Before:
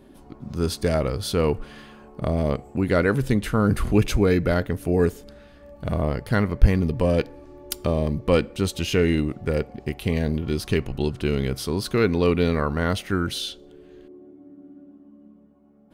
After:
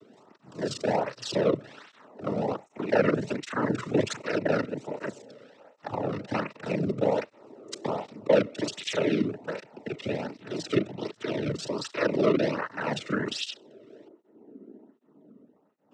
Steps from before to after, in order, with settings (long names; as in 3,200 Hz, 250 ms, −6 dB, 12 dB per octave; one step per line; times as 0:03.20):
reversed piece by piece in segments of 32 ms
cochlear-implant simulation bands 12
through-zero flanger with one copy inverted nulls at 1.3 Hz, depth 1.3 ms